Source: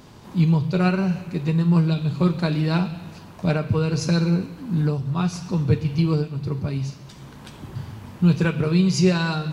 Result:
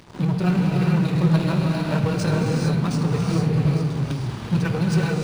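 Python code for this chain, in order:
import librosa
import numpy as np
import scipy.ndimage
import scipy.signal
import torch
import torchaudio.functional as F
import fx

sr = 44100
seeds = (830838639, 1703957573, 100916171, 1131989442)

p1 = fx.fade_out_tail(x, sr, length_s=1.15)
p2 = fx.fuzz(p1, sr, gain_db=37.0, gate_db=-42.0)
p3 = p1 + (p2 * librosa.db_to_amplitude(-10.0))
p4 = fx.stretch_grains(p3, sr, factor=0.55, grain_ms=53.0)
p5 = fx.rev_gated(p4, sr, seeds[0], gate_ms=470, shape='rising', drr_db=-0.5)
p6 = np.interp(np.arange(len(p5)), np.arange(len(p5))[::3], p5[::3])
y = p6 * librosa.db_to_amplitude(-4.5)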